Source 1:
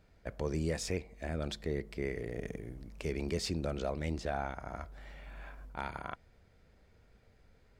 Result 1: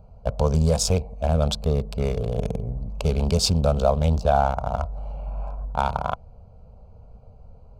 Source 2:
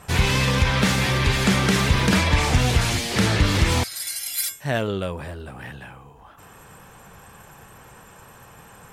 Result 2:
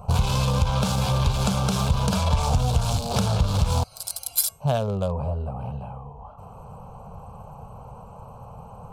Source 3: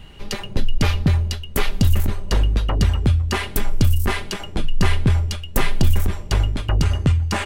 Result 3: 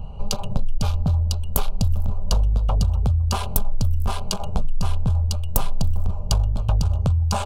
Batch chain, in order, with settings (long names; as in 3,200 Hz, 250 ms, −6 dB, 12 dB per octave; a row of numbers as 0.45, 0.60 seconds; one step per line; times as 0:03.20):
adaptive Wiener filter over 25 samples
downward compressor 5 to 1, threshold −27 dBFS
phaser with its sweep stopped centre 790 Hz, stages 4
loudness normalisation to −24 LKFS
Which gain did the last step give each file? +19.0, +10.0, +10.5 decibels